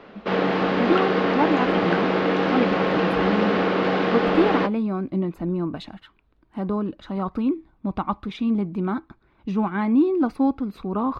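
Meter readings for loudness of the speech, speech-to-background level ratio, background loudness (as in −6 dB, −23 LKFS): −25.5 LKFS, −3.5 dB, −22.0 LKFS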